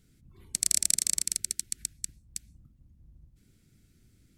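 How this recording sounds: noise floor -65 dBFS; spectral tilt +0.5 dB/oct

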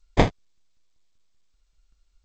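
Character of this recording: a buzz of ramps at a fixed pitch in blocks of 8 samples; tremolo saw down 5.2 Hz, depth 50%; aliases and images of a low sample rate 1400 Hz, jitter 0%; G.722

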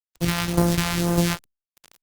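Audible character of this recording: a buzz of ramps at a fixed pitch in blocks of 256 samples; phasing stages 2, 2 Hz, lowest notch 350–2700 Hz; a quantiser's noise floor 6-bit, dither none; Opus

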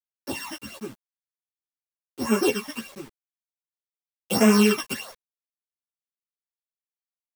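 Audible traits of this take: a buzz of ramps at a fixed pitch in blocks of 16 samples; phasing stages 12, 1.4 Hz, lowest notch 430–4200 Hz; a quantiser's noise floor 8-bit, dither none; a shimmering, thickened sound

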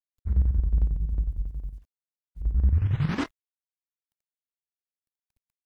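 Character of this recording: a quantiser's noise floor 12-bit, dither none; chopped level 11 Hz, depth 60%, duty 60%

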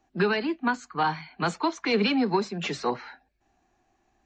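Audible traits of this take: noise floor -71 dBFS; spectral tilt -3.5 dB/oct

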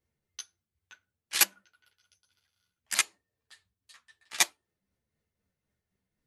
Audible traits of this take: tremolo triangle 3.9 Hz, depth 45%; a shimmering, thickened sound

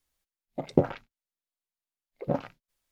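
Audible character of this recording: noise floor -94 dBFS; spectral tilt -7.0 dB/oct

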